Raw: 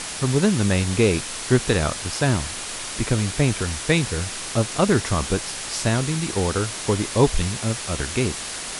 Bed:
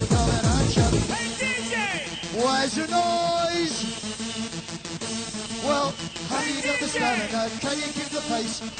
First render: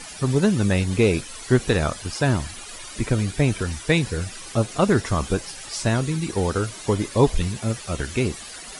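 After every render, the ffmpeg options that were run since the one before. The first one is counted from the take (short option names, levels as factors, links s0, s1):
-af "afftdn=nr=13:nf=-32"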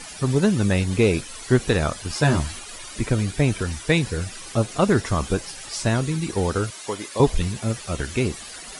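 -filter_complex "[0:a]asettb=1/sr,asplit=3[s0][s1][s2];[s0]atrim=end=2.094[s3];[s1]atrim=start=2.09:end=2.59,asetpts=PTS-STARTPTS,afade=t=in:d=0.004:c=qsin,afade=t=out:st=0.496:d=0.004:c=qsin,asplit=2[s4][s5];[s5]adelay=13,volume=0.794[s6];[s4][s6]amix=inputs=2:normalize=0,atrim=end_sample=22050[s7];[s2]atrim=start=2.586[s8];[s3][s7]acrossfade=d=0.004:c1=hsin:c2=qsin[s9];[s9][s8]acrossfade=d=0.004:c1=qsin:c2=hsin,asettb=1/sr,asplit=3[s10][s11][s12];[s10]atrim=end=6.704[s13];[s11]atrim=start=6.7:end=7.2,asetpts=PTS-STARTPTS,afade=t=in:d=0.004:c=qsin,afade=t=out:st=0.496:d=0.004:c=qsin,highpass=f=770:p=1[s14];[s12]atrim=start=7.196[s15];[s13][s14]acrossfade=d=0.004:c1=hsin:c2=qsin[s16];[s16][s15]acrossfade=d=0.004:c1=qsin:c2=hsin"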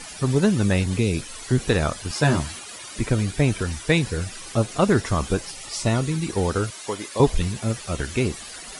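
-filter_complex "[0:a]asettb=1/sr,asplit=3[s0][s1][s2];[s0]atrim=end=0.864[s3];[s1]atrim=start=0.86:end=1.58,asetpts=PTS-STARTPTS,afade=t=in:d=0.004:c=qsin,afade=t=out:st=0.716:d=0.004:c=qsin,acrossover=split=290|3000[s4][s5][s6];[s5]acompressor=threshold=0.0355:ratio=6:attack=3.2:release=140:knee=2.83:detection=peak[s7];[s4][s7][s6]amix=inputs=3:normalize=0[s8];[s2]atrim=start=1.576[s9];[s3][s8]acrossfade=d=0.004:c1=hsin:c2=qsin[s10];[s10][s9]acrossfade=d=0.004:c1=qsin:c2=hsin,asettb=1/sr,asplit=3[s11][s12][s13];[s11]atrim=end=2.114[s14];[s12]atrim=start=2.11:end=2.98,asetpts=PTS-STARTPTS,afade=t=in:d=0.004:c=qsin,afade=t=out:st=0.866:d=0.004:c=qsin,highpass=89[s15];[s13]atrim=start=2.976[s16];[s14][s15]acrossfade=d=0.004:c1=hsin:c2=qsin[s17];[s17][s16]acrossfade=d=0.004:c1=qsin:c2=hsin,asettb=1/sr,asplit=3[s18][s19][s20];[s18]atrim=end=5.514[s21];[s19]atrim=start=5.51:end=6.02,asetpts=PTS-STARTPTS,afade=t=in:d=0.004:c=qsin,afade=t=out:st=0.506:d=0.004:c=qsin,asuperstop=centerf=1600:order=12:qfactor=7.2[s22];[s20]atrim=start=6.016[s23];[s21][s22]acrossfade=d=0.004:c1=hsin:c2=qsin[s24];[s24][s23]acrossfade=d=0.004:c1=qsin:c2=hsin"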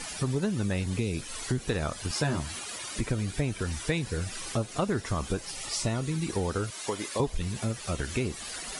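-af "acompressor=threshold=0.0398:ratio=3"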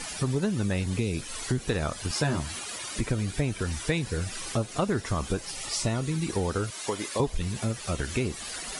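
-af "volume=1.19"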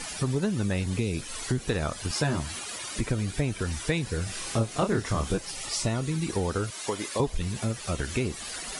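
-filter_complex "[0:a]asettb=1/sr,asplit=3[s0][s1][s2];[s0]atrim=end=4.244[s3];[s1]atrim=start=4.24:end=5.38,asetpts=PTS-STARTPTS,afade=t=in:d=0.004:c=qsin,afade=t=out:st=1.136:d=0.004:c=qsin,asplit=2[s4][s5];[s5]adelay=27,volume=0.596[s6];[s4][s6]amix=inputs=2:normalize=0,atrim=end_sample=50274[s7];[s2]atrim=start=5.376[s8];[s3][s7]acrossfade=d=0.004:c1=hsin:c2=qsin[s9];[s9][s8]acrossfade=d=0.004:c1=qsin:c2=hsin"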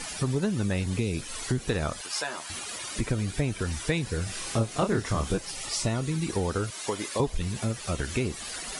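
-filter_complex "[0:a]asettb=1/sr,asplit=3[s0][s1][s2];[s0]atrim=end=2.014[s3];[s1]atrim=start=2.01:end=2.5,asetpts=PTS-STARTPTS,afade=t=in:d=0.004:c=qsin,afade=t=out:st=0.486:d=0.004:c=qsin,highpass=680[s4];[s2]atrim=start=2.496[s5];[s3][s4]acrossfade=d=0.004:c1=hsin:c2=qsin[s6];[s6][s5]acrossfade=d=0.004:c1=qsin:c2=hsin"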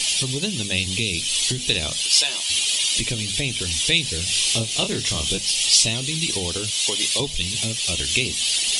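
-af "highshelf=f=2100:t=q:w=3:g=13.5,bandreject=f=50:t=h:w=6,bandreject=f=100:t=h:w=6,bandreject=f=150:t=h:w=6,bandreject=f=200:t=h:w=6,bandreject=f=250:t=h:w=6"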